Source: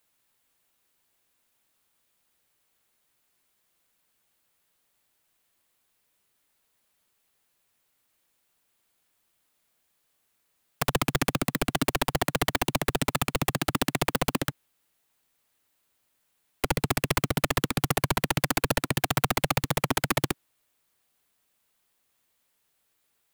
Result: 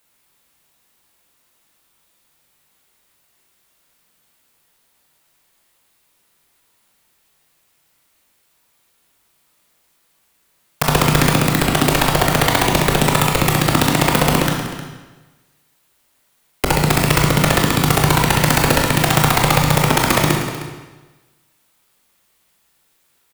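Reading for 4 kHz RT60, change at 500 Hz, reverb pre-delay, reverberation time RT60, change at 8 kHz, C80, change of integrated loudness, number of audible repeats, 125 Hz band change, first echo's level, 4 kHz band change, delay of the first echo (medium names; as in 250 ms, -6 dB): 1.2 s, +11.5 dB, 20 ms, 1.3 s, +11.5 dB, 4.5 dB, +12.0 dB, 1, +14.0 dB, -14.5 dB, +11.5 dB, 309 ms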